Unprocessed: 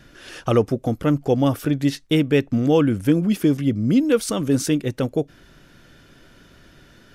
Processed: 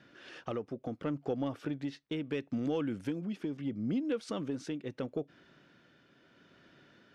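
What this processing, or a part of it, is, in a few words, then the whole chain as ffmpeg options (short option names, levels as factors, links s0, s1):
AM radio: -filter_complex "[0:a]asettb=1/sr,asplit=3[s0][s1][s2];[s0]atrim=end=2.264[s3];[s1]atrim=start=2.26:end=3.25,asetpts=PTS-STARTPTS,afade=t=in:d=0.004:c=qsin,afade=t=out:st=0.986:d=0.004:c=qsin,highshelf=f=4300:g=9.5[s4];[s2]atrim=start=3.246[s5];[s3][s4]acrossfade=d=0.004:c1=hsin:c2=qsin[s6];[s6][s5]acrossfade=d=0.004:c1=qsin:c2=hsin,highpass=160,lowpass=4000,acompressor=threshold=0.0891:ratio=4,asoftclip=type=tanh:threshold=0.282,tremolo=f=0.74:d=0.36,volume=0.376"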